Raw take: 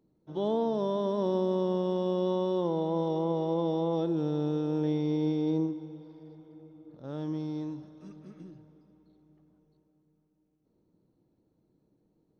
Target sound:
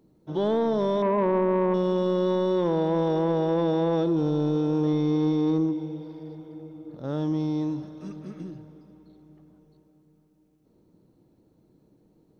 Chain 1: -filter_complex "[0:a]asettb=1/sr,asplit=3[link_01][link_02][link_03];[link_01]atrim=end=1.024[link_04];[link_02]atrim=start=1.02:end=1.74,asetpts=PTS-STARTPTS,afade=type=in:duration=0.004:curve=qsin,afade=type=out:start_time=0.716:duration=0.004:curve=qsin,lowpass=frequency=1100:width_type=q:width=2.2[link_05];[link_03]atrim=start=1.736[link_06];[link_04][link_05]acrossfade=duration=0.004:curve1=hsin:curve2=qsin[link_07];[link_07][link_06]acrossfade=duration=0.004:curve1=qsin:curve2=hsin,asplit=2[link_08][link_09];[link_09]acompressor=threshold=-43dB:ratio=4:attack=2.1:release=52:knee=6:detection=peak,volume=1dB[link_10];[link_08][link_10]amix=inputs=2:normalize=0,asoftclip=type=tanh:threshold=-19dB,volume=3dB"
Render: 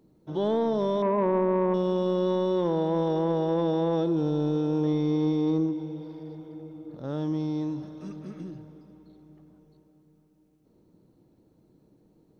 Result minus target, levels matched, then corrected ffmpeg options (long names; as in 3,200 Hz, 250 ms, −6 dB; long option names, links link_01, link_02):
downward compressor: peak gain reduction +8 dB
-filter_complex "[0:a]asettb=1/sr,asplit=3[link_01][link_02][link_03];[link_01]atrim=end=1.024[link_04];[link_02]atrim=start=1.02:end=1.74,asetpts=PTS-STARTPTS,afade=type=in:duration=0.004:curve=qsin,afade=type=out:start_time=0.716:duration=0.004:curve=qsin,lowpass=frequency=1100:width_type=q:width=2.2[link_05];[link_03]atrim=start=1.736[link_06];[link_04][link_05]acrossfade=duration=0.004:curve1=hsin:curve2=qsin[link_07];[link_07][link_06]acrossfade=duration=0.004:curve1=qsin:curve2=hsin,asplit=2[link_08][link_09];[link_09]acompressor=threshold=-32dB:ratio=4:attack=2.1:release=52:knee=6:detection=peak,volume=1dB[link_10];[link_08][link_10]amix=inputs=2:normalize=0,asoftclip=type=tanh:threshold=-19dB,volume=3dB"